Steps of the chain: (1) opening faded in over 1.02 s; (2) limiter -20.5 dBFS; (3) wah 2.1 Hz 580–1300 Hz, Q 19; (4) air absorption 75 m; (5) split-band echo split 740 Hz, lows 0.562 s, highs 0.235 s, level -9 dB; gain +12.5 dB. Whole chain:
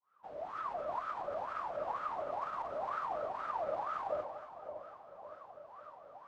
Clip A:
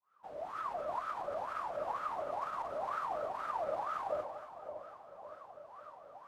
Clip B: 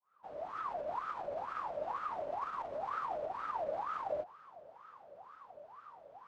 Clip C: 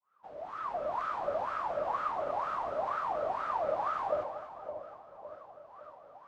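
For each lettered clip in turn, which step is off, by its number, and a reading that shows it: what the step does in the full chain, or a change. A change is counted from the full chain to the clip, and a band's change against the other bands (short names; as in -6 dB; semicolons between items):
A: 4, 4 kHz band +1.5 dB; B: 5, echo-to-direct -7.5 dB to none; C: 2, mean gain reduction 3.0 dB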